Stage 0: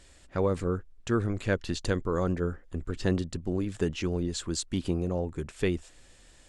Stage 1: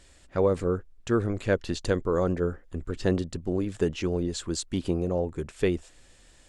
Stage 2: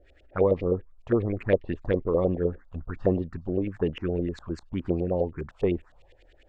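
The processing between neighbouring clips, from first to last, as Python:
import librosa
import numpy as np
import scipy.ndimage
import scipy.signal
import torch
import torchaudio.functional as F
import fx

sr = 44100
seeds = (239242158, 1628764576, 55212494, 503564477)

y1 = fx.dynamic_eq(x, sr, hz=520.0, q=0.98, threshold_db=-39.0, ratio=4.0, max_db=5)
y2 = fx.echo_wet_highpass(y1, sr, ms=415, feedback_pct=70, hz=5200.0, wet_db=-20.0)
y2 = fx.filter_lfo_lowpass(y2, sr, shape='saw_up', hz=9.8, low_hz=490.0, high_hz=3000.0, q=2.8)
y2 = fx.env_phaser(y2, sr, low_hz=170.0, high_hz=1500.0, full_db=-20.5)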